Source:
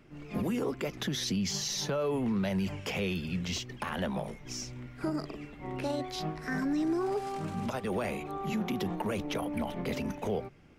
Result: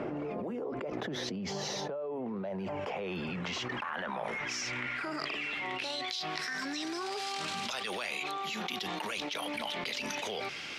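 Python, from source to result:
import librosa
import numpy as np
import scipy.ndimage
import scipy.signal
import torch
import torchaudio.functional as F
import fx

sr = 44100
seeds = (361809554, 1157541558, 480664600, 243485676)

y = fx.filter_sweep_bandpass(x, sr, from_hz=600.0, to_hz=4000.0, start_s=2.4, end_s=6.17, q=1.5)
y = fx.env_flatten(y, sr, amount_pct=100)
y = y * 10.0 ** (-6.5 / 20.0)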